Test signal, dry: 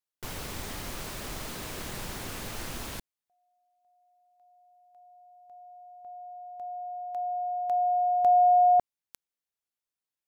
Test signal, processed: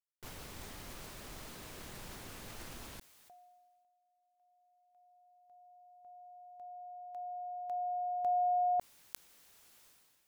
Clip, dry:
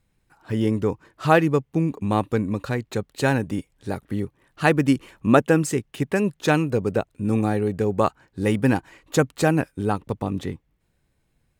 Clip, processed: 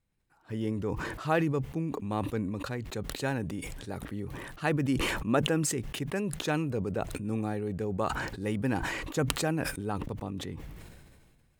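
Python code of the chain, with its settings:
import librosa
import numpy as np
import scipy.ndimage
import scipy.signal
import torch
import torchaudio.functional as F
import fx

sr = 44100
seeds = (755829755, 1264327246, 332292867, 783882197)

y = fx.sustainer(x, sr, db_per_s=30.0)
y = y * librosa.db_to_amplitude(-11.0)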